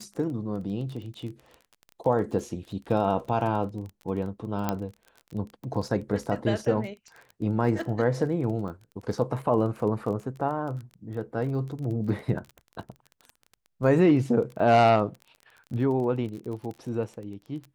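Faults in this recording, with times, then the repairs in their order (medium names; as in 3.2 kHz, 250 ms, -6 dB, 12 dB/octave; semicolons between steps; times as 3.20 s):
crackle 23 per s -35 dBFS
4.69 s: pop -12 dBFS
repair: de-click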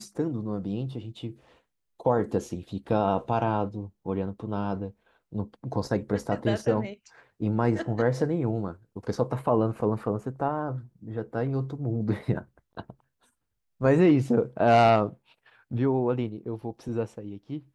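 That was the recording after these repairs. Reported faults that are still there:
nothing left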